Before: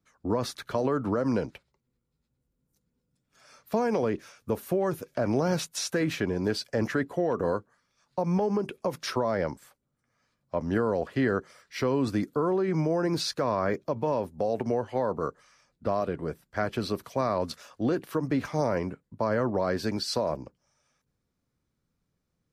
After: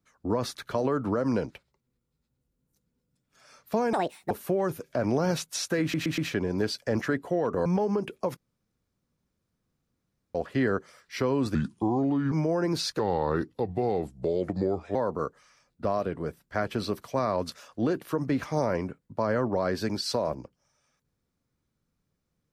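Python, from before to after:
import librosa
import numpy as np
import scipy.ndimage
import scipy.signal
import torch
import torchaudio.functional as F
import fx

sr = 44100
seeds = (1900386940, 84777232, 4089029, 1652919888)

y = fx.edit(x, sr, fx.speed_span(start_s=3.93, length_s=0.6, speed=1.59),
    fx.stutter(start_s=6.04, slice_s=0.12, count=4),
    fx.cut(start_s=7.52, length_s=0.75),
    fx.room_tone_fill(start_s=8.98, length_s=1.98),
    fx.speed_span(start_s=12.16, length_s=0.57, speed=0.74),
    fx.speed_span(start_s=13.4, length_s=1.57, speed=0.8), tone=tone)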